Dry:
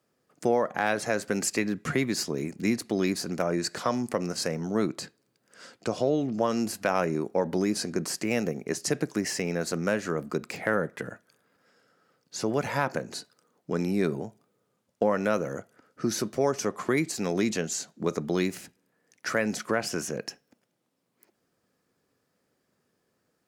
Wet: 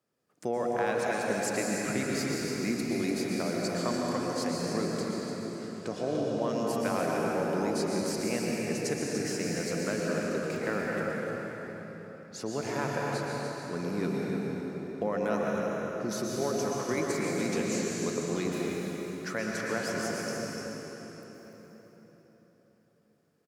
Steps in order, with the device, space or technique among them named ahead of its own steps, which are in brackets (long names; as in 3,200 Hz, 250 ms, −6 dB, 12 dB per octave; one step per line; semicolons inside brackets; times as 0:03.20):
cave (single-tap delay 295 ms −8.5 dB; convolution reverb RT60 4.3 s, pre-delay 109 ms, DRR −3 dB)
level −7.5 dB